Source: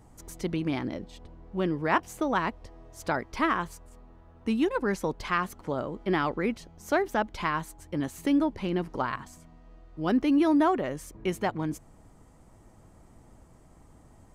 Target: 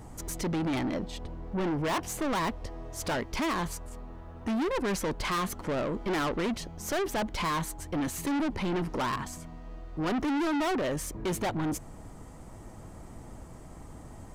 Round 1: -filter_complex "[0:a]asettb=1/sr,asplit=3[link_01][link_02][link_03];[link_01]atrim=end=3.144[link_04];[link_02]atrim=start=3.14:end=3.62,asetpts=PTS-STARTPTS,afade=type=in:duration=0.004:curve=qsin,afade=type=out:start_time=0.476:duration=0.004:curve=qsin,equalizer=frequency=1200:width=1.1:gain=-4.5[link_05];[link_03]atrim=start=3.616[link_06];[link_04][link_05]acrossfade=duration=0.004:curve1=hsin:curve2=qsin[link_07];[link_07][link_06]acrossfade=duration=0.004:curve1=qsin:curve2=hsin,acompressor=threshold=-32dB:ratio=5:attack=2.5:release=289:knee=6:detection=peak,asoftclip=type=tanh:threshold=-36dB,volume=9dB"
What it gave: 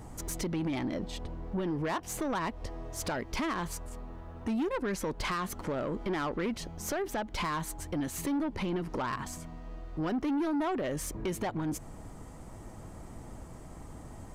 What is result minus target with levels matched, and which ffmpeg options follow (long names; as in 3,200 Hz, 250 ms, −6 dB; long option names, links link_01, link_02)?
downward compressor: peak gain reduction +15 dB
-filter_complex "[0:a]asettb=1/sr,asplit=3[link_01][link_02][link_03];[link_01]atrim=end=3.144[link_04];[link_02]atrim=start=3.14:end=3.62,asetpts=PTS-STARTPTS,afade=type=in:duration=0.004:curve=qsin,afade=type=out:start_time=0.476:duration=0.004:curve=qsin,equalizer=frequency=1200:width=1.1:gain=-4.5[link_05];[link_03]atrim=start=3.616[link_06];[link_04][link_05]acrossfade=duration=0.004:curve1=hsin:curve2=qsin[link_07];[link_07][link_06]acrossfade=duration=0.004:curve1=qsin:curve2=hsin,asoftclip=type=tanh:threshold=-36dB,volume=9dB"